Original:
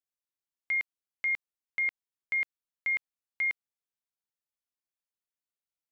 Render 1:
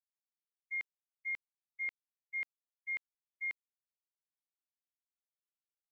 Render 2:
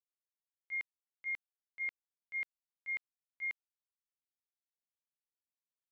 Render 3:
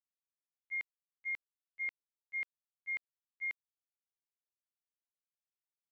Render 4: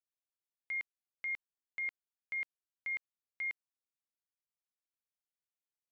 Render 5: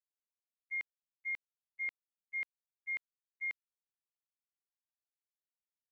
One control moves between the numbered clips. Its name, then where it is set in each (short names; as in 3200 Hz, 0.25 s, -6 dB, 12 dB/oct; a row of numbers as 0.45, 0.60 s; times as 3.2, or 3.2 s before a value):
gate, range: -59, -21, -34, -9, -46 dB